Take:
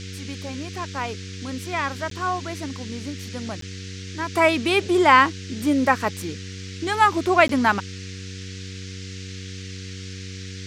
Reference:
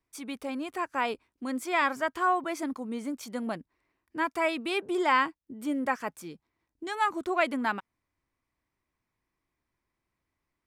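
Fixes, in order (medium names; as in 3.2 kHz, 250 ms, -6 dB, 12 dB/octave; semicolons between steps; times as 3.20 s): de-hum 94.5 Hz, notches 5; interpolate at 2.10/3.61/7.48 s, 13 ms; noise print and reduce 30 dB; gain correction -10 dB, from 4.33 s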